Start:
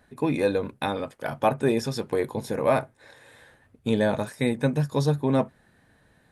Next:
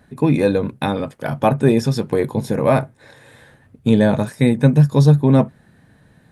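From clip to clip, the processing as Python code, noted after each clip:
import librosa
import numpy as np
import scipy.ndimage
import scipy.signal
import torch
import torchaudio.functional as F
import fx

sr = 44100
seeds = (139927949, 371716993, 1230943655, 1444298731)

y = fx.peak_eq(x, sr, hz=150.0, db=9.0, octaves=1.8)
y = y * librosa.db_to_amplitude(4.5)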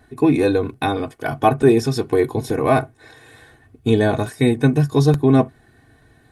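y = x + 0.79 * np.pad(x, (int(2.7 * sr / 1000.0), 0))[:len(x)]
y = fx.buffer_crackle(y, sr, first_s=0.74, period_s=0.88, block=64, kind='repeat')
y = y * librosa.db_to_amplitude(-1.0)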